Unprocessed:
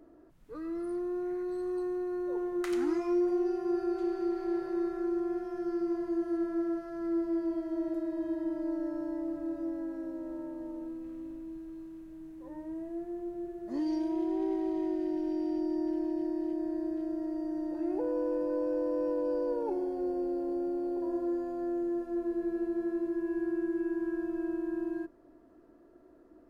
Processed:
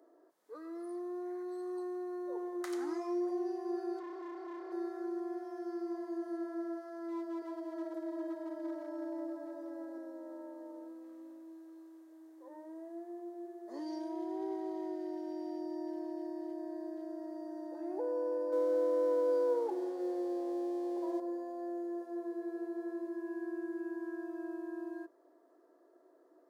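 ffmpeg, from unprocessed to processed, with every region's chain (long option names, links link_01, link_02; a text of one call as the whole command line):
ffmpeg -i in.wav -filter_complex "[0:a]asettb=1/sr,asplit=3[link_01][link_02][link_03];[link_01]atrim=end=3.994[link_04];[link_02]atrim=start=3.99:end=4.72,asetpts=PTS-STARTPTS,afade=type=in:duration=0.004:curve=qsin,afade=type=out:start_time=0.726:duration=0.004:curve=qsin,asoftclip=type=hard:threshold=-36dB,lowpass=frequency=2700:poles=1[link_05];[link_03]atrim=start=4.716[link_06];[link_04][link_05]acrossfade=duration=0.004:curve1=hsin:curve2=qsin[link_07];[link_07][link_06]acrossfade=duration=0.004:curve1=qsin:curve2=hsin,asettb=1/sr,asplit=3[link_08][link_09][link_10];[link_08]atrim=end=7.084[link_11];[link_09]atrim=start=7.08:end=9.98,asetpts=PTS-STARTPTS,afade=type=in:duration=0.004:curve=qsin,afade=type=out:start_time=2.896:duration=0.004:curve=qsin,volume=28.5dB,asoftclip=hard,volume=-28.5dB,aecho=1:1:338:0.473,atrim=end_sample=127890[link_12];[link_10]atrim=start=9.976[link_13];[link_11][link_12]acrossfade=duration=0.004:curve1=hsin:curve2=qsin[link_14];[link_14][link_13]acrossfade=duration=0.004:curve1=qsin:curve2=hsin,asettb=1/sr,asplit=3[link_15][link_16][link_17];[link_15]atrim=end=18.524[link_18];[link_16]atrim=start=18.52:end=21.2,asetpts=PTS-STARTPTS,afade=type=in:duration=0.004:curve=qsin,afade=type=out:start_time=2.676:duration=0.004:curve=qsin,aecho=1:1:6.1:0.73,atrim=end_sample=118188,aeval=exprs='sgn(val(0))*max(abs(val(0))-0.00251,0)':channel_layout=same[link_19];[link_17]atrim=start=21.196[link_20];[link_18][link_19]acrossfade=duration=0.004:curve1=hsin:curve2=qsin[link_21];[link_21][link_20]acrossfade=duration=0.004:curve1=qsin:curve2=hsin,highpass=frequency=390:width=0.5412,highpass=frequency=390:width=1.3066,equalizer=frequency=2600:width=2.2:gain=-10.5,bandreject=frequency=1400:width=14,volume=-1.5dB" out.wav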